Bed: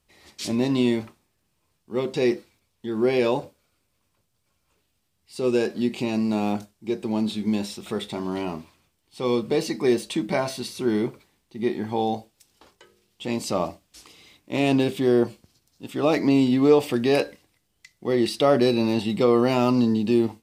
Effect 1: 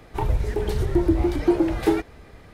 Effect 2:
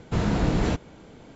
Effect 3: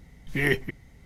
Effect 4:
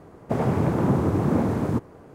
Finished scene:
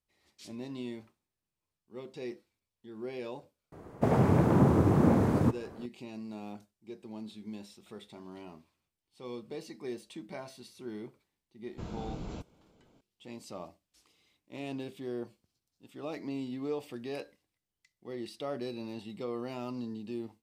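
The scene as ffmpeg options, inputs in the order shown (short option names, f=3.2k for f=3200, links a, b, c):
-filter_complex "[0:a]volume=-18.5dB[a];[2:a]equalizer=f=1.8k:w=5.2:g=-14[b];[4:a]atrim=end=2.14,asetpts=PTS-STARTPTS,volume=-2dB,afade=t=in:d=0.004:c=hsin,afade=t=out:st=2.136:d=0.004:c=hsin,adelay=3720[c];[b]atrim=end=1.35,asetpts=PTS-STARTPTS,volume=-17dB,afade=t=in:d=0.004:c=hsin,afade=t=out:st=1.346:d=0.004:c=hsin,adelay=11660[d];[a][c][d]amix=inputs=3:normalize=0"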